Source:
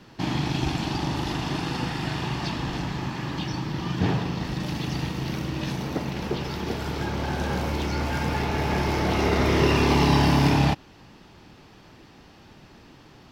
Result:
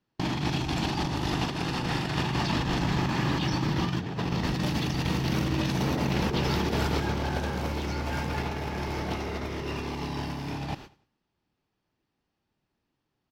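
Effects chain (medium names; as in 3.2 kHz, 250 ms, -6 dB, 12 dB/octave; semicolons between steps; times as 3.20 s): gate -37 dBFS, range -35 dB; peak limiter -18.5 dBFS, peak gain reduction 10.5 dB; compressor with a negative ratio -30 dBFS, ratio -0.5; 1.44–2.16 s: AM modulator 240 Hz, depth 30%; on a send: feedback delay 97 ms, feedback 33%, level -20 dB; on the sum: trim +2 dB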